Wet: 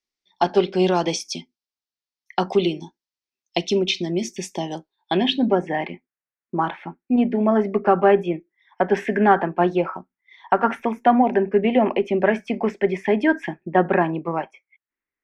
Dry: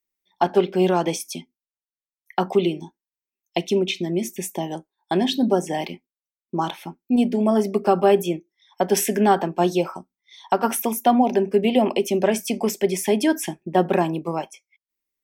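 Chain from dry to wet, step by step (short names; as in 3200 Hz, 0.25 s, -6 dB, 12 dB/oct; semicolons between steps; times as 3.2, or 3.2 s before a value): added harmonics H 6 -43 dB, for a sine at -5.5 dBFS; low-pass sweep 5000 Hz -> 1800 Hz, 4.72–5.73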